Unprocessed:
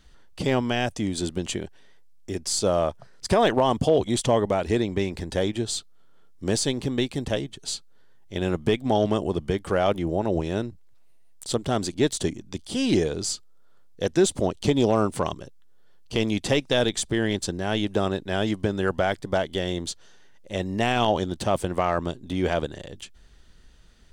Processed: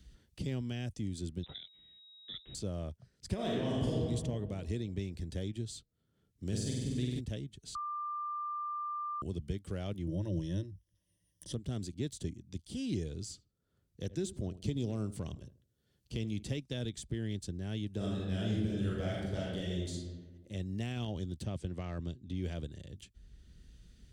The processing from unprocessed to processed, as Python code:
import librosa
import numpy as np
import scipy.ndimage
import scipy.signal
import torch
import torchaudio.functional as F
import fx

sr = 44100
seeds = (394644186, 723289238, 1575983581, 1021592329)

y = fx.freq_invert(x, sr, carrier_hz=3800, at=(1.43, 2.55))
y = fx.reverb_throw(y, sr, start_s=3.34, length_s=0.58, rt60_s=1.8, drr_db=-6.0)
y = fx.room_flutter(y, sr, wall_m=8.3, rt60_s=1.3, at=(6.51, 7.19), fade=0.02)
y = fx.ripple_eq(y, sr, per_octave=1.2, db=14, at=(10.07, 11.53))
y = fx.echo_filtered(y, sr, ms=78, feedback_pct=33, hz=1300.0, wet_db=-15.5, at=(13.22, 16.43))
y = fx.reverb_throw(y, sr, start_s=17.96, length_s=1.95, rt60_s=1.1, drr_db=-5.5)
y = fx.lowpass(y, sr, hz=6400.0, slope=12, at=(21.45, 22.42))
y = fx.edit(y, sr, fx.bleep(start_s=7.75, length_s=1.47, hz=1190.0, db=-10.0), tone=tone)
y = scipy.signal.sosfilt(scipy.signal.butter(2, 56.0, 'highpass', fs=sr, output='sos'), y)
y = fx.tone_stack(y, sr, knobs='10-0-1')
y = fx.band_squash(y, sr, depth_pct=40)
y = F.gain(torch.from_numpy(y), 5.0).numpy()